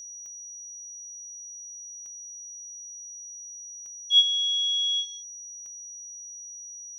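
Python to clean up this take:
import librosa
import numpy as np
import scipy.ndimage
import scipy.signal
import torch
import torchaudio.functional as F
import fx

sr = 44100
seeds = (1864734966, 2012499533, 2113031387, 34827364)

y = fx.fix_declick_ar(x, sr, threshold=10.0)
y = fx.notch(y, sr, hz=5800.0, q=30.0)
y = fx.fix_echo_inverse(y, sr, delay_ms=169, level_db=-18.0)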